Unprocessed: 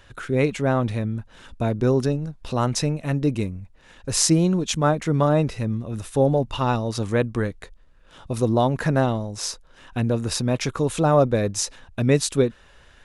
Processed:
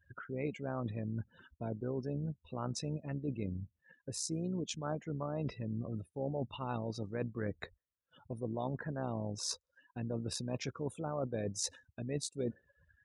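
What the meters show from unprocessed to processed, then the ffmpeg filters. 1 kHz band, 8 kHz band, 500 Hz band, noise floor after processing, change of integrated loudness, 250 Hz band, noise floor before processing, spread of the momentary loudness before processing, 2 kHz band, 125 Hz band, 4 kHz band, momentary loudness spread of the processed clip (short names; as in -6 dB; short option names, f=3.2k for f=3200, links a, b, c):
-18.5 dB, -15.0 dB, -17.5 dB, under -85 dBFS, -17.0 dB, -16.0 dB, -52 dBFS, 10 LU, -17.5 dB, -16.5 dB, -15.0 dB, 7 LU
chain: -af "areverse,acompressor=threshold=-31dB:ratio=10,areverse,tremolo=f=64:d=0.462,highpass=85,afftdn=nr=36:nf=-46,volume=-1dB"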